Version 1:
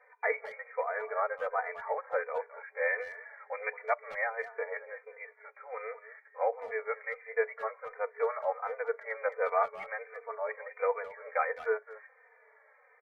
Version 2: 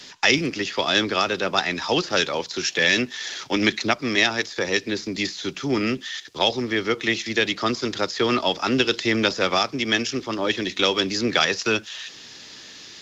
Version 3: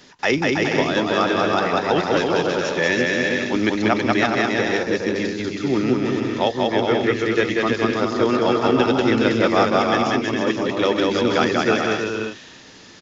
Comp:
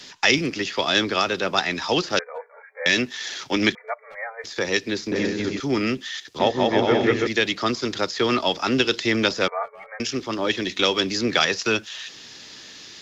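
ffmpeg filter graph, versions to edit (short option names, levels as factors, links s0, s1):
-filter_complex "[0:a]asplit=3[s0][s1][s2];[2:a]asplit=2[s3][s4];[1:a]asplit=6[s5][s6][s7][s8][s9][s10];[s5]atrim=end=2.192[s11];[s0]atrim=start=2.188:end=2.862[s12];[s6]atrim=start=2.858:end=3.752[s13];[s1]atrim=start=3.748:end=4.442[s14];[s7]atrim=start=4.438:end=5.122[s15];[s3]atrim=start=5.118:end=5.602[s16];[s8]atrim=start=5.598:end=6.402[s17];[s4]atrim=start=6.398:end=7.272[s18];[s9]atrim=start=7.268:end=9.482[s19];[s2]atrim=start=9.478:end=10.002[s20];[s10]atrim=start=9.998[s21];[s11][s12]acrossfade=d=0.004:c1=hsin:c2=hsin[s22];[s22][s13]acrossfade=d=0.004:c1=hsin:c2=hsin[s23];[s23][s14]acrossfade=d=0.004:c1=hsin:c2=hsin[s24];[s24][s15]acrossfade=d=0.004:c1=hsin:c2=hsin[s25];[s25][s16]acrossfade=d=0.004:c1=hsin:c2=hsin[s26];[s26][s17]acrossfade=d=0.004:c1=hsin:c2=hsin[s27];[s27][s18]acrossfade=d=0.004:c1=hsin:c2=hsin[s28];[s28][s19]acrossfade=d=0.004:c1=hsin:c2=hsin[s29];[s29][s20]acrossfade=d=0.004:c1=hsin:c2=hsin[s30];[s30][s21]acrossfade=d=0.004:c1=hsin:c2=hsin"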